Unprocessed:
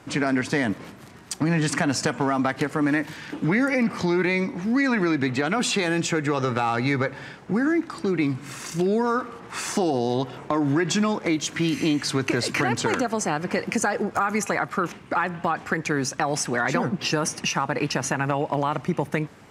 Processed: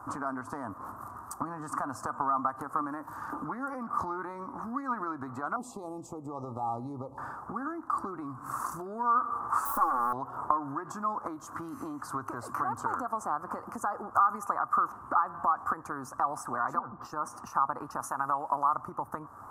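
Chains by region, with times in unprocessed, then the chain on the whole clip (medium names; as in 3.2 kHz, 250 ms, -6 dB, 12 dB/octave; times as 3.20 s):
5.56–7.18 s: Butterworth band-stop 1.6 kHz, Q 0.54 + treble shelf 7.2 kHz -7 dB
9.65–10.13 s: self-modulated delay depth 0.8 ms + comb 3.6 ms, depth 75%
16.79–17.47 s: peaking EQ 11 kHz -12.5 dB 0.32 oct + compression 2:1, threshold -33 dBFS + three bands expanded up and down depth 100%
18.00–18.74 s: high-pass 160 Hz 6 dB/octave + treble shelf 3.3 kHz +10 dB
whole clip: compression 6:1, threshold -31 dBFS; FFT filter 100 Hz 0 dB, 170 Hz -14 dB, 250 Hz -4 dB, 450 Hz -9 dB, 1.2 kHz +15 dB, 2.2 kHz -27 dB, 3.3 kHz -28 dB, 12 kHz +2 dB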